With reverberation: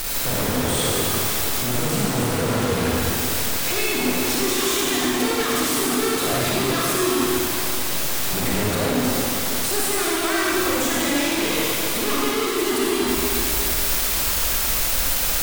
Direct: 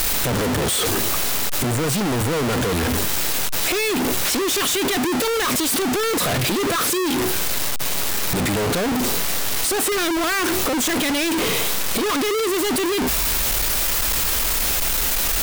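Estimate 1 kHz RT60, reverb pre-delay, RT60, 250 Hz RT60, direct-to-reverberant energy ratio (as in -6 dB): 2.9 s, 36 ms, 2.8 s, 2.7 s, -5.0 dB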